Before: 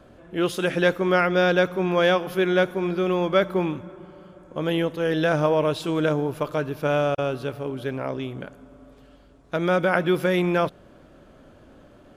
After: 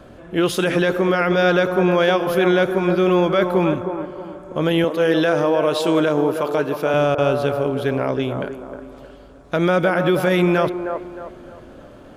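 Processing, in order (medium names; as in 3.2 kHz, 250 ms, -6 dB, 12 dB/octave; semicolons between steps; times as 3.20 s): 4.84–6.94 s: high-pass 210 Hz 12 dB/octave; peak limiter -16.5 dBFS, peak gain reduction 11.5 dB; feedback echo behind a band-pass 311 ms, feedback 37%, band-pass 680 Hz, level -5.5 dB; trim +7.5 dB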